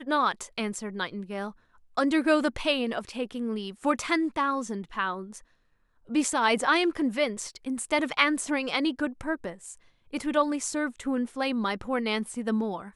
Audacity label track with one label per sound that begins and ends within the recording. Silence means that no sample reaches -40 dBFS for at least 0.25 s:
1.970000	5.390000	sound
6.090000	9.740000	sound